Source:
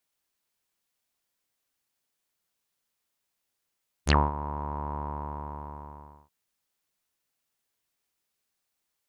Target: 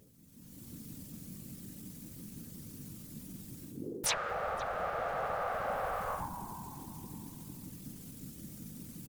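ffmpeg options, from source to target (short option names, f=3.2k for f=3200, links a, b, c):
-filter_complex "[0:a]bass=f=250:g=13,treble=f=4k:g=10,asplit=2[a][b];[b]adelay=488,lowpass=f=880:p=1,volume=-20.5dB,asplit=2[c][d];[d]adelay=488,lowpass=f=880:p=1,volume=0.49,asplit=2[e][f];[f]adelay=488,lowpass=f=880:p=1,volume=0.49,asplit=2[g][h];[h]adelay=488,lowpass=f=880:p=1,volume=0.49[i];[c][e][g][i]amix=inputs=4:normalize=0[j];[a][j]amix=inputs=2:normalize=0,asetrate=66075,aresample=44100,atempo=0.66742,aeval=exprs='val(0)+0.00501*(sin(2*PI*50*n/s)+sin(2*PI*2*50*n/s)/2+sin(2*PI*3*50*n/s)/3+sin(2*PI*4*50*n/s)/4+sin(2*PI*5*50*n/s)/5)':c=same,areverse,acompressor=threshold=-36dB:ratio=10,areverse,afreqshift=-450,equalizer=f=250:w=1.8:g=5.5,afftfilt=real='re*lt(hypot(re,im),0.01)':imag='im*lt(hypot(re,im),0.01)':win_size=1024:overlap=0.75,afftfilt=real='hypot(re,im)*cos(2*PI*random(0))':imag='hypot(re,im)*sin(2*PI*random(1))':win_size=512:overlap=0.75,dynaudnorm=f=150:g=7:m=16dB,volume=12.5dB"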